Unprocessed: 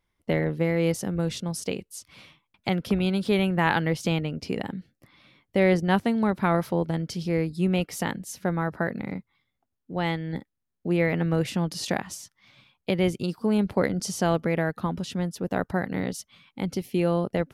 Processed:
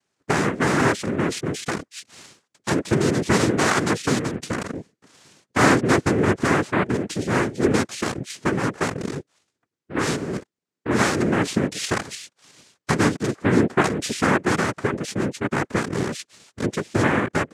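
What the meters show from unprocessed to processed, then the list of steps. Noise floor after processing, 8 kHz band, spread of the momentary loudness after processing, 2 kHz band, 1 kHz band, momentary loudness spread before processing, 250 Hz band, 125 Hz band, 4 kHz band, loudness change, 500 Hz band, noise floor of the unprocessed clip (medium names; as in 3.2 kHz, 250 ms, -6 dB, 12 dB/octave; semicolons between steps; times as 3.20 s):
-84 dBFS, +8.0 dB, 12 LU, +7.5 dB, +6.0 dB, 12 LU, +3.5 dB, +2.0 dB, +5.5 dB, +4.0 dB, +3.0 dB, -80 dBFS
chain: noise-vocoded speech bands 3; trim +4 dB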